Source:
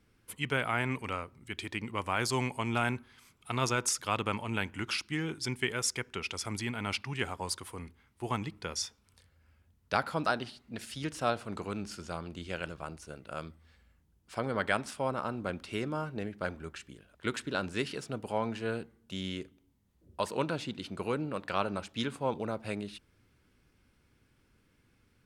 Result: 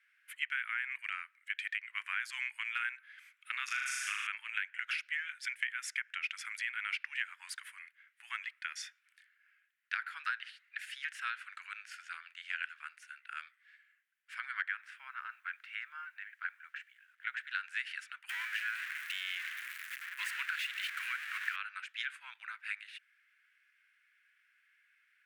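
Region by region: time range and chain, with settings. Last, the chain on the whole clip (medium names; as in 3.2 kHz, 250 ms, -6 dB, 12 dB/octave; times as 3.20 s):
3.64–4.27 s: high-pass 1.2 kHz 6 dB/octave + flutter echo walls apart 6.6 m, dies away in 1.2 s
14.68–17.47 s: low-pass 1.6 kHz 6 dB/octave + word length cut 12-bit, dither none
18.29–21.56 s: jump at every zero crossing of -30.5 dBFS + high-pass 880 Hz 24 dB/octave
whole clip: elliptic high-pass 1.6 kHz, stop band 70 dB; resonant high shelf 3.1 kHz -13.5 dB, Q 1.5; compression 6:1, threshold -39 dBFS; trim +6.5 dB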